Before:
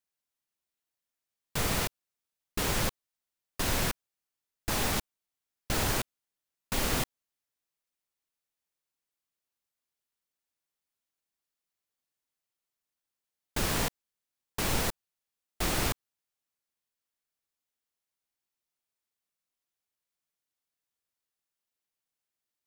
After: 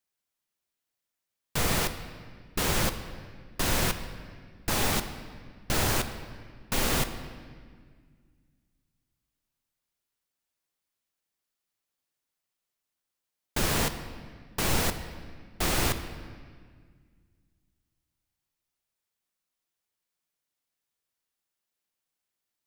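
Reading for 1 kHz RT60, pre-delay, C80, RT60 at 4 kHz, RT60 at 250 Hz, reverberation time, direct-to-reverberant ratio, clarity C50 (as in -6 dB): 1.7 s, 6 ms, 11.5 dB, 1.5 s, 2.5 s, 1.8 s, 9.0 dB, 10.5 dB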